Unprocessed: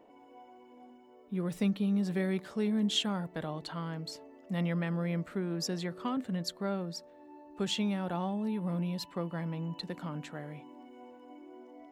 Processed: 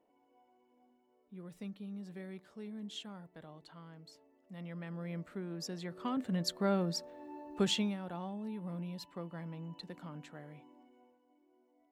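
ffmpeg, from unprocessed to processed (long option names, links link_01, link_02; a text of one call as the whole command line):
ffmpeg -i in.wav -af "volume=4dB,afade=type=in:start_time=4.59:duration=0.62:silence=0.421697,afade=type=in:start_time=5.8:duration=1.08:silence=0.266073,afade=type=out:start_time=7.54:duration=0.43:silence=0.251189,afade=type=out:start_time=10.61:duration=0.62:silence=0.251189" out.wav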